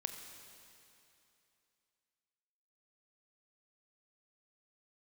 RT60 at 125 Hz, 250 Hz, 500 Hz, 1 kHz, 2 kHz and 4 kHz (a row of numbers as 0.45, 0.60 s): 2.8, 2.8, 2.8, 2.9, 2.8, 2.8 s